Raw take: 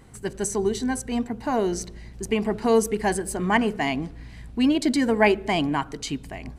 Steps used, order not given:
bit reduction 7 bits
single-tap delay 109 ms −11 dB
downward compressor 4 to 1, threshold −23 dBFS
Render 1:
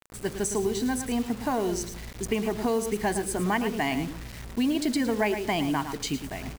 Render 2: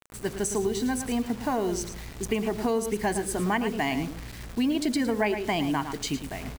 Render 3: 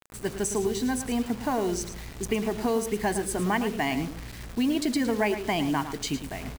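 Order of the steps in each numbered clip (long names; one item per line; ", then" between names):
single-tap delay, then downward compressor, then bit reduction
bit reduction, then single-tap delay, then downward compressor
downward compressor, then bit reduction, then single-tap delay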